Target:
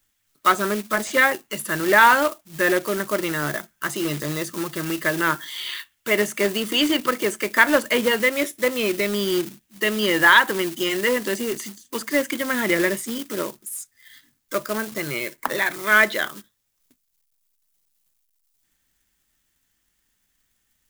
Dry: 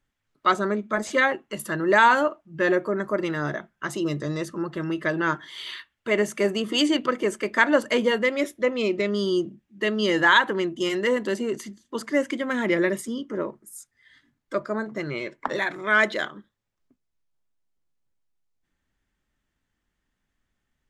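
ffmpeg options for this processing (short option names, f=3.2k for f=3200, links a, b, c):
-filter_complex "[0:a]acrusher=bits=3:mode=log:mix=0:aa=0.000001,acrossover=split=3000[a][b];[b]acompressor=threshold=-46dB:ratio=4:attack=1:release=60[c];[a][c]amix=inputs=2:normalize=0,crystalizer=i=5.5:c=0"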